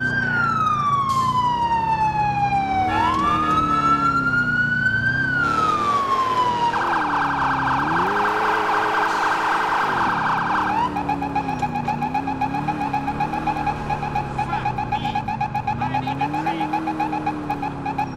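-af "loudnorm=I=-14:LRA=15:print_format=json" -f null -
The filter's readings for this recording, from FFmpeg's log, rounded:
"input_i" : "-21.1",
"input_tp" : "-8.4",
"input_lra" : "5.3",
"input_thresh" : "-31.1",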